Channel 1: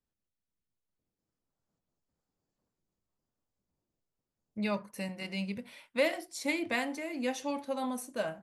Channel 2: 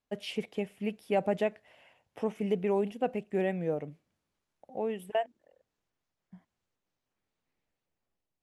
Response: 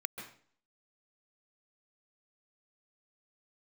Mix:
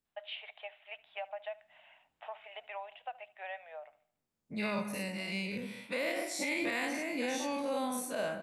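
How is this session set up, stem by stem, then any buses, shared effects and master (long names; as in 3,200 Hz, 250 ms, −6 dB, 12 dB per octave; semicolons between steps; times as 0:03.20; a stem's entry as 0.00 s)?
−6.0 dB, 0.00 s, send −7 dB, no echo send, every bin's largest magnitude spread in time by 120 ms
+0.5 dB, 0.05 s, no send, echo send −21.5 dB, Chebyshev band-pass filter 620–3,800 Hz, order 5; downward compressor 6 to 1, threshold −39 dBFS, peak gain reduction 13 dB; automatic ducking −17 dB, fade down 0.90 s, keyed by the first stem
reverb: on, RT60 0.50 s, pre-delay 129 ms
echo: repeating echo 74 ms, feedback 41%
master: brickwall limiter −25 dBFS, peak gain reduction 9 dB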